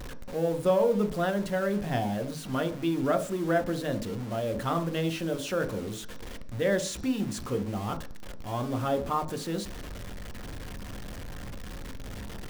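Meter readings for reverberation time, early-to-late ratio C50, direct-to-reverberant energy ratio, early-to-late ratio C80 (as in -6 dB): 0.50 s, 14.5 dB, 7.0 dB, 17.5 dB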